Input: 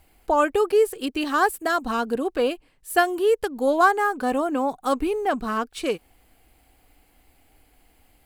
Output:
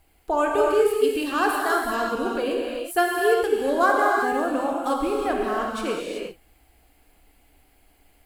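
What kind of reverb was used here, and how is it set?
non-linear reverb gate 0.41 s flat, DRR -2 dB; gain -4 dB

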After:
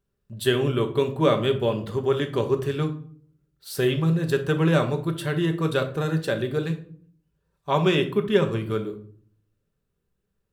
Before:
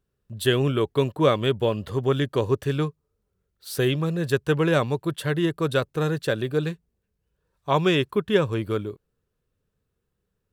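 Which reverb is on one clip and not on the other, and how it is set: shoebox room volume 590 m³, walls furnished, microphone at 1.2 m; gain -2 dB

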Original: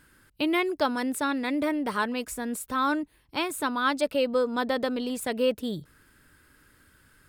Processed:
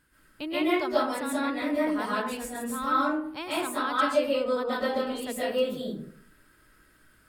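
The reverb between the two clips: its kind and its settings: digital reverb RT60 0.63 s, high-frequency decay 0.45×, pre-delay 95 ms, DRR -8 dB; gain -9 dB

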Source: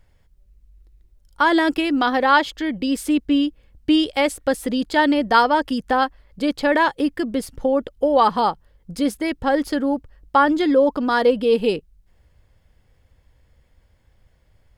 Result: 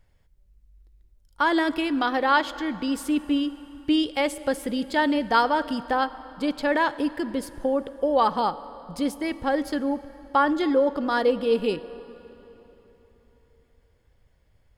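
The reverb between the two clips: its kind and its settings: plate-style reverb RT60 3.7 s, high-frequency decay 0.75×, DRR 15 dB; gain -5 dB

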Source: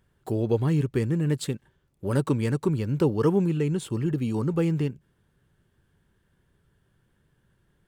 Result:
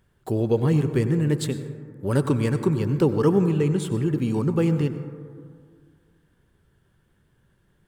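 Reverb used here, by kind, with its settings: plate-style reverb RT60 2.1 s, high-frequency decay 0.25×, pre-delay 80 ms, DRR 9.5 dB; gain +2.5 dB

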